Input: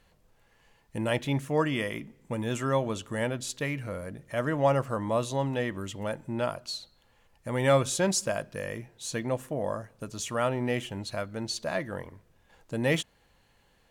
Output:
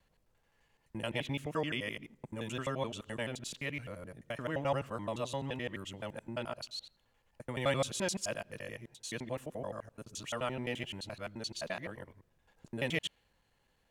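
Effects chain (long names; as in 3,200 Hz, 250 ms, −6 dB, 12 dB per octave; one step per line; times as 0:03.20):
reversed piece by piece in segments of 86 ms
dynamic equaliser 2,900 Hz, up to +8 dB, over −50 dBFS, Q 1.3
level −9 dB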